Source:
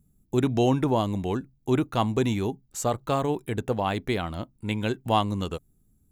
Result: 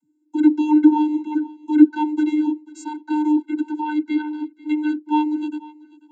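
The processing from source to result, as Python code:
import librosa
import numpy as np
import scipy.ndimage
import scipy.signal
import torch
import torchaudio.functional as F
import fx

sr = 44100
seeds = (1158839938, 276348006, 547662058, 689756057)

p1 = fx.vocoder(x, sr, bands=32, carrier='square', carrier_hz=303.0)
p2 = p1 + fx.echo_feedback(p1, sr, ms=490, feedback_pct=30, wet_db=-20.5, dry=0)
y = p2 * librosa.db_to_amplitude(8.0)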